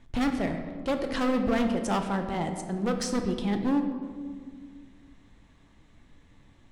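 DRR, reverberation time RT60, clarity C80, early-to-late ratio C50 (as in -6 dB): 5.0 dB, 1.9 s, 8.5 dB, 7.0 dB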